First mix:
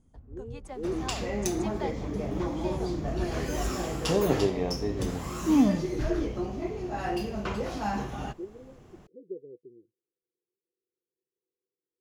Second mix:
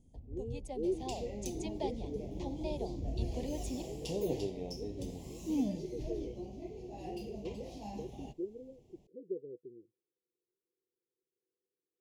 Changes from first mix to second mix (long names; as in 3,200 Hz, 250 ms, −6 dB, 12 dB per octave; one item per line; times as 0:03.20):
second sound −11.5 dB
master: add Butterworth band-reject 1,400 Hz, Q 0.75